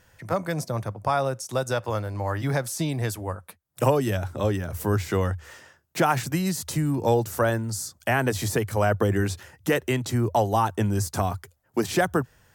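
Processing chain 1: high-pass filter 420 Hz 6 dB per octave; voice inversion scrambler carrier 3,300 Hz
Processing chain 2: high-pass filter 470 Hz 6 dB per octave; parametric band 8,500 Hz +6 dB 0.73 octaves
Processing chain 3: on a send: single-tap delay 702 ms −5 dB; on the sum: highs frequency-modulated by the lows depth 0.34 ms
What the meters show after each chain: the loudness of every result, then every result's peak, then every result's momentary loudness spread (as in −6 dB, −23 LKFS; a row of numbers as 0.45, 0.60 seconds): −26.5, −28.5, −25.0 LKFS; −10.0, −10.0, −7.5 dBFS; 9, 9, 7 LU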